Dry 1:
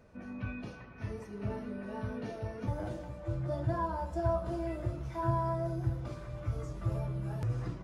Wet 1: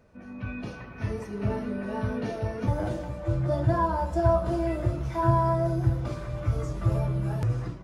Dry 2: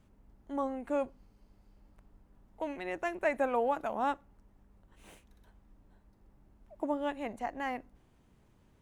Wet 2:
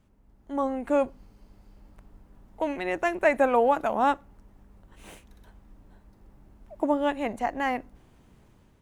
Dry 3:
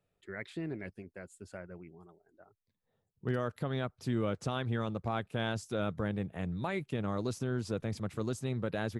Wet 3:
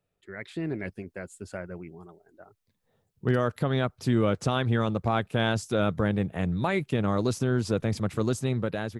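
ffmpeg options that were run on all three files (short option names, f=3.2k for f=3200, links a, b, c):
-af "dynaudnorm=f=220:g=5:m=8.5dB"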